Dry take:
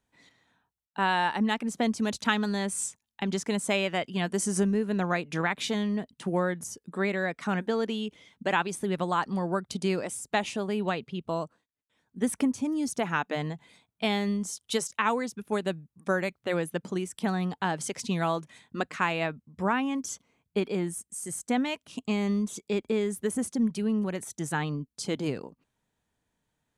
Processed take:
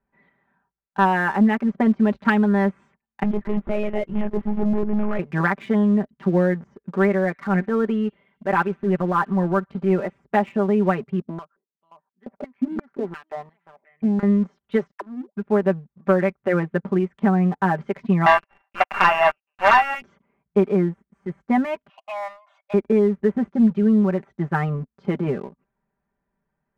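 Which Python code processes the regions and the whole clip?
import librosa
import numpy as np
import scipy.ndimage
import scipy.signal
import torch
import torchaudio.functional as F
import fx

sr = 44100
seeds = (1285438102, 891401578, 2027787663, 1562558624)

y = fx.chain(x, sr, fx.clip_hard(threshold_db=-28.5),
    fx.air_absorb(metres=110.0),
    fx.lpc_monotone(seeds[0], pitch_hz=210.0, order=16), at=(3.23, 5.19))
y = fx.chain(y, sr, fx.transient(attack_db=-8, sustain_db=-3),
    fx.echo_wet_highpass(ms=63, feedback_pct=64, hz=4500.0, wet_db=-11.0), at=(7.0, 10.18))
y = fx.chain(y, sr, fx.low_shelf(hz=350.0, db=8.0),
    fx.echo_single(ms=538, db=-15.0),
    fx.filter_held_bandpass(hz=5.7, low_hz=260.0, high_hz=5100.0), at=(11.21, 14.23))
y = fx.chain(y, sr, fx.high_shelf(hz=6100.0, db=-9.0),
    fx.auto_wah(base_hz=250.0, top_hz=4800.0, q=18.0, full_db=-24.0, direction='down'), at=(14.91, 15.36))
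y = fx.chain(y, sr, fx.sample_sort(block=16),
    fx.cheby1_highpass(hz=660.0, order=4),
    fx.leveller(passes=3), at=(18.26, 20.02))
y = fx.chain(y, sr, fx.brickwall_highpass(low_hz=560.0),
    fx.comb(ms=2.8, depth=0.58), at=(21.89, 22.74))
y = scipy.signal.sosfilt(scipy.signal.butter(4, 1900.0, 'lowpass', fs=sr, output='sos'), y)
y = y + 0.8 * np.pad(y, (int(5.1 * sr / 1000.0), 0))[:len(y)]
y = fx.leveller(y, sr, passes=1)
y = y * librosa.db_to_amplitude(2.5)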